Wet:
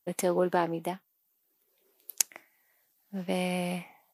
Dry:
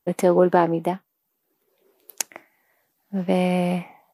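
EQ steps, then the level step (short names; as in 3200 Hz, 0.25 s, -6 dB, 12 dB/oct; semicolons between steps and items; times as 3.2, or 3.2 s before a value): high shelf 2300 Hz +12 dB; -10.5 dB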